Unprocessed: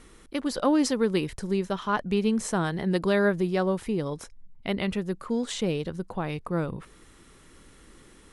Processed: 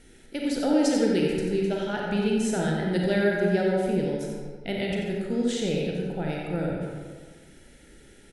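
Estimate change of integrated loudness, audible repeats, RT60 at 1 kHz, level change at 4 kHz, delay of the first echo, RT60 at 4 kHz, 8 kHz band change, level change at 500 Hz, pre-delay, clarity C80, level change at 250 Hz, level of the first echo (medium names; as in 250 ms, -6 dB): +1.0 dB, 1, 1.7 s, +1.0 dB, 90 ms, 0.95 s, 0.0 dB, +2.0 dB, 31 ms, 0.5 dB, +1.5 dB, -6.5 dB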